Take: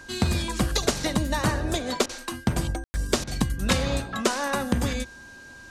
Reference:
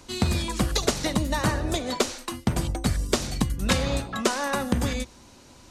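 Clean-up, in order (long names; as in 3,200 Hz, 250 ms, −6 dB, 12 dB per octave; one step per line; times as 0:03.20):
notch filter 1,600 Hz, Q 30
ambience match 0:02.84–0:02.94
repair the gap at 0:02.06/0:03.24, 31 ms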